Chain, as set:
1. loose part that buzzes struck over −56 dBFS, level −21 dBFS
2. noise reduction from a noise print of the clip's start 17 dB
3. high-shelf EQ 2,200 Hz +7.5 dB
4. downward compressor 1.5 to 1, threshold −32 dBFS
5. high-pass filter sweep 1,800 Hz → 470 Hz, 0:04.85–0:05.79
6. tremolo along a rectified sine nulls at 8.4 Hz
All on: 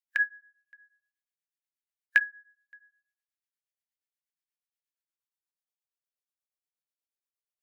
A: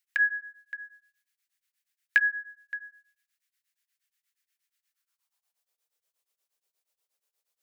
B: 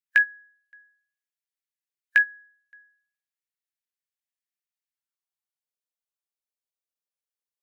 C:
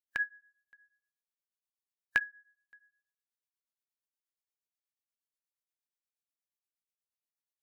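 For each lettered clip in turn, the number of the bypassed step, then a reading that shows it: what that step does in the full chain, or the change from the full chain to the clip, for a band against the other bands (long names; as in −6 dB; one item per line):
2, change in crest factor −2.5 dB
6, change in crest factor −4.5 dB
5, change in crest factor +1.5 dB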